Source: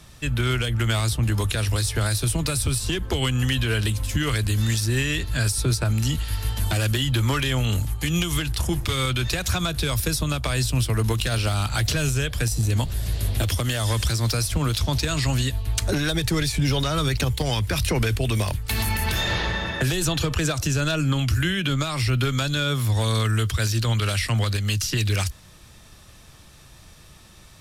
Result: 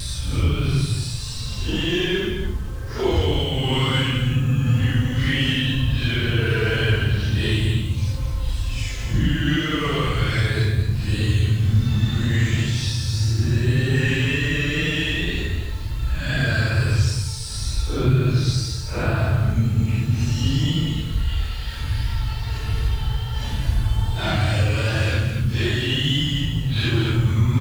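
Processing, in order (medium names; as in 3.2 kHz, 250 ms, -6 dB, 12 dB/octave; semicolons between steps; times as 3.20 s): low-pass 4.4 kHz 12 dB/octave; in parallel at -7 dB: saturation -27.5 dBFS, distortion -8 dB; on the sum: Paulstretch 5.9×, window 0.05 s, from 2.60 s; bit crusher 8-bit; wow and flutter 28 cents; delay 220 ms -7.5 dB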